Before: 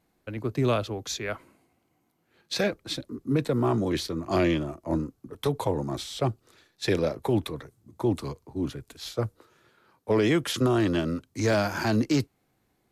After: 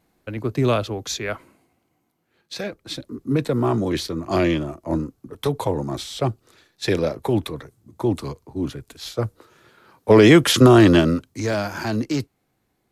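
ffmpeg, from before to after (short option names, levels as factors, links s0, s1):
-af "volume=11.2,afade=t=out:st=1.25:d=1.39:silence=0.354813,afade=t=in:st=2.64:d=0.54:silence=0.398107,afade=t=in:st=9.18:d=1.15:silence=0.398107,afade=t=out:st=10.94:d=0.49:silence=0.266073"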